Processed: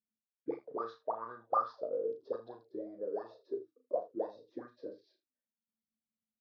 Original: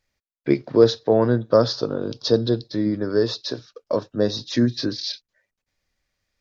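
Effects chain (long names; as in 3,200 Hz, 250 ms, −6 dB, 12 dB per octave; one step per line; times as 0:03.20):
envelope filter 220–1,200 Hz, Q 20, up, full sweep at −13.5 dBFS
ambience of single reflections 35 ms −6.5 dB, 79 ms −15 dB
level +1 dB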